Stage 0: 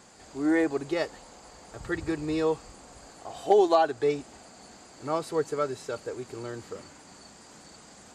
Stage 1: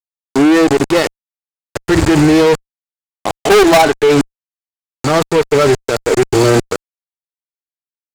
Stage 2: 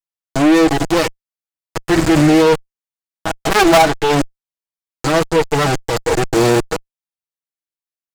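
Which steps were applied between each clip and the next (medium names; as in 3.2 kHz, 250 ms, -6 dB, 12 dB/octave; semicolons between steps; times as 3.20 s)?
level held to a coarse grid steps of 20 dB; harmonic-percussive split harmonic +8 dB; fuzz box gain 36 dB, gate -41 dBFS; trim +7.5 dB
comb filter that takes the minimum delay 6.2 ms; trim -1 dB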